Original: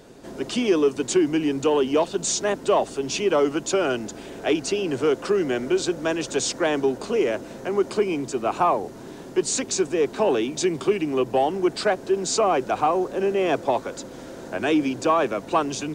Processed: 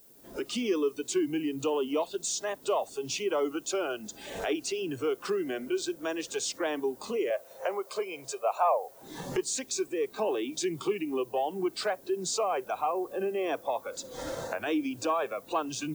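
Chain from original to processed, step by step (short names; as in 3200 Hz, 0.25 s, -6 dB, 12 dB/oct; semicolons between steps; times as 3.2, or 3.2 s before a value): recorder AGC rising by 33 dB/s; spectral noise reduction 13 dB; 7.3–9.02 resonant low shelf 390 Hz -11.5 dB, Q 3; added noise violet -49 dBFS; gain -8.5 dB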